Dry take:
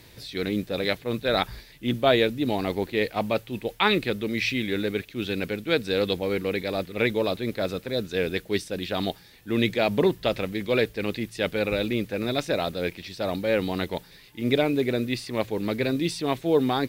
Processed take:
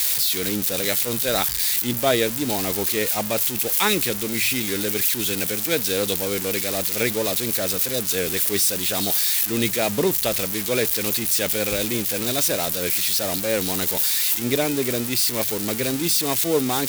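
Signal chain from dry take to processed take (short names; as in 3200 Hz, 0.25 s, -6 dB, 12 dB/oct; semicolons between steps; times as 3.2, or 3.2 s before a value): switching spikes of -13.5 dBFS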